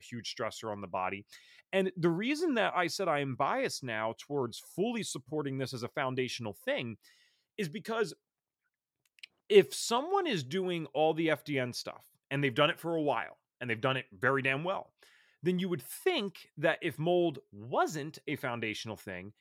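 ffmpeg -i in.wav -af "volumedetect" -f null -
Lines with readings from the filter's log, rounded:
mean_volume: -33.4 dB
max_volume: -10.2 dB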